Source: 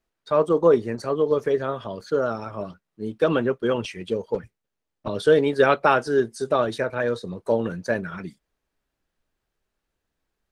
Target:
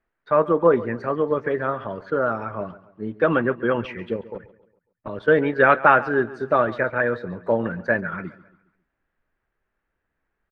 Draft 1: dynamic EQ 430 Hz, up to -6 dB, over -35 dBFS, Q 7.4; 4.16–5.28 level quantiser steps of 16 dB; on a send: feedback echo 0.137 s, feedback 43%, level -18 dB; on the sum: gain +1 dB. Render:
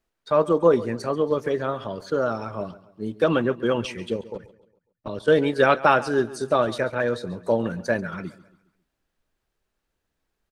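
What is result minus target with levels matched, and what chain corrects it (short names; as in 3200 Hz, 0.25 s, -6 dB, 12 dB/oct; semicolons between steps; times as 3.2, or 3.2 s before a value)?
2000 Hz band -4.0 dB
dynamic EQ 430 Hz, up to -6 dB, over -35 dBFS, Q 7.4; synth low-pass 1800 Hz, resonance Q 2; 4.16–5.28 level quantiser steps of 16 dB; on a send: feedback echo 0.137 s, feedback 43%, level -18 dB; on the sum: gain +1 dB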